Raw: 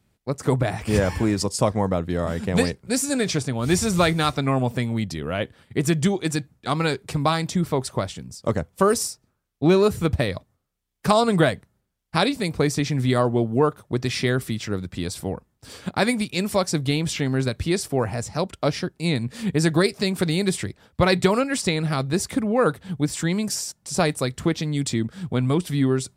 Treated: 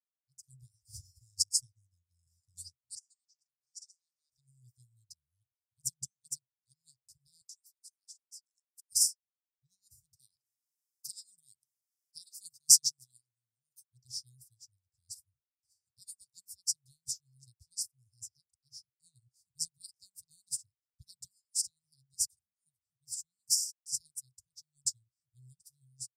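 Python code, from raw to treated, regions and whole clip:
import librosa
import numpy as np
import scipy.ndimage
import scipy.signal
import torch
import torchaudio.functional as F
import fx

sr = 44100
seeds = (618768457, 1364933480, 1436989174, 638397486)

y = fx.chain(x, sr, fx.level_steps(step_db=12),
    fx.bandpass_q(hz=5400.0, q=0.62),
    fx.air_absorb(metres=73.0), at=(2.95, 4.32))
y = fx.chain(y, sr, fx.highpass(hz=1000.0, slope=24),
    fx.over_compress(threshold_db=-35.0, ratio=-1.0), at=(7.41, 8.92))
y = fx.chain(y, sr, fx.highpass(hz=210.0, slope=24),
    fx.env_flatten(amount_pct=50), at=(10.13, 13.84))
y = scipy.signal.sosfilt(scipy.signal.cheby1(5, 1.0, [130.0, 5000.0], 'bandstop', fs=sr, output='sos'), y)
y = fx.tilt_shelf(y, sr, db=-8.0, hz=770.0)
y = fx.upward_expand(y, sr, threshold_db=-44.0, expansion=2.5)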